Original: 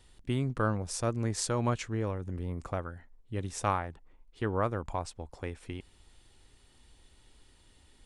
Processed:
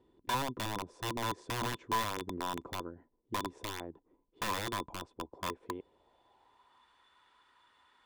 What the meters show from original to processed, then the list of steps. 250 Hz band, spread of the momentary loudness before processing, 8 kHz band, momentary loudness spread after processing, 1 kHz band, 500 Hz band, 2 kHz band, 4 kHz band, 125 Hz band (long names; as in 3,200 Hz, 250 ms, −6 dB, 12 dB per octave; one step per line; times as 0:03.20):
−6.5 dB, 13 LU, −5.5 dB, 11 LU, 0.0 dB, −7.5 dB, +1.0 dB, +4.5 dB, −12.0 dB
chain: downward compressor 1.5 to 1, threshold −35 dBFS, peak gain reduction 5 dB
band-pass filter sweep 340 Hz → 1,300 Hz, 0:05.43–0:06.94
wrap-around overflow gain 37 dB
hollow resonant body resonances 1,000/3,500 Hz, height 14 dB, ringing for 60 ms
level +7 dB